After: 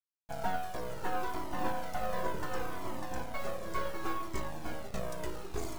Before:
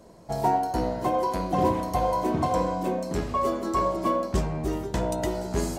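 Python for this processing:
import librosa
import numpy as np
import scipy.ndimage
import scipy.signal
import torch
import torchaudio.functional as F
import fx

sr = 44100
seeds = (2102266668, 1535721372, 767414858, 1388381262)

y = fx.delta_hold(x, sr, step_db=-36.0)
y = fx.low_shelf(y, sr, hz=83.0, db=-11.5)
y = np.maximum(y, 0.0)
y = y + 10.0 ** (-6.0 / 20.0) * np.pad(y, (int(598 * sr / 1000.0), 0))[:len(y)]
y = fx.comb_cascade(y, sr, direction='falling', hz=0.69)
y = y * 10.0 ** (-2.5 / 20.0)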